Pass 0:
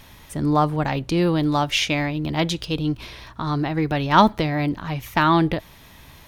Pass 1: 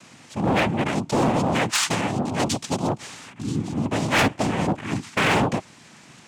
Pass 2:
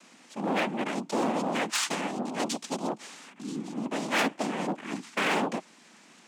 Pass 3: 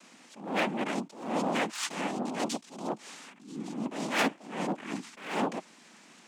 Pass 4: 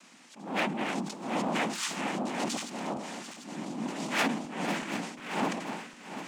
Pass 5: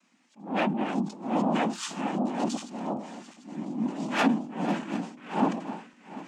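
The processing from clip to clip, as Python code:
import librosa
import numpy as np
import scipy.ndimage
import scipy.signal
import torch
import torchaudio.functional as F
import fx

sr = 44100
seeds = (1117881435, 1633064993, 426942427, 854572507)

y1 = fx.spec_repair(x, sr, seeds[0], start_s=3.39, length_s=0.43, low_hz=270.0, high_hz=3300.0, source='both')
y1 = fx.noise_vocoder(y1, sr, seeds[1], bands=4)
y1 = np.clip(y1, -10.0 ** (-15.5 / 20.0), 10.0 ** (-15.5 / 20.0))
y2 = scipy.signal.sosfilt(scipy.signal.butter(6, 190.0, 'highpass', fs=sr, output='sos'), y1)
y2 = y2 * librosa.db_to_amplitude(-6.5)
y3 = fx.attack_slew(y2, sr, db_per_s=100.0)
y4 = fx.reverse_delay_fb(y3, sr, ms=371, feedback_pct=71, wet_db=-9)
y4 = fx.peak_eq(y4, sr, hz=460.0, db=-4.0, octaves=1.1)
y4 = fx.sustainer(y4, sr, db_per_s=74.0)
y5 = fx.dynamic_eq(y4, sr, hz=2100.0, q=3.2, threshold_db=-50.0, ratio=4.0, max_db=-5)
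y5 = fx.spectral_expand(y5, sr, expansion=1.5)
y5 = y5 * librosa.db_to_amplitude(3.5)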